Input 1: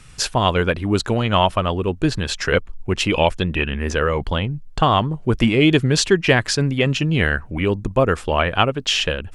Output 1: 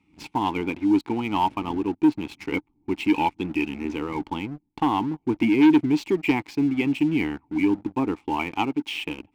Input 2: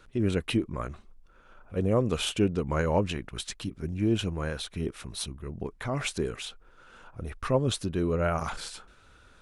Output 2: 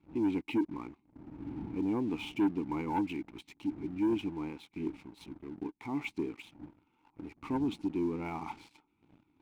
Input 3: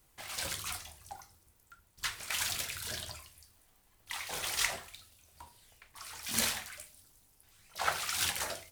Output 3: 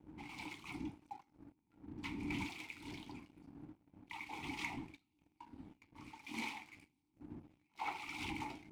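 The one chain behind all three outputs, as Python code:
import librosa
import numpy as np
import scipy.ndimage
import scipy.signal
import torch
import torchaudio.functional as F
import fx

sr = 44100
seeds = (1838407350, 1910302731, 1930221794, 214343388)

y = fx.dmg_wind(x, sr, seeds[0], corner_hz=100.0, level_db=-38.0)
y = fx.vowel_filter(y, sr, vowel='u')
y = fx.leveller(y, sr, passes=2)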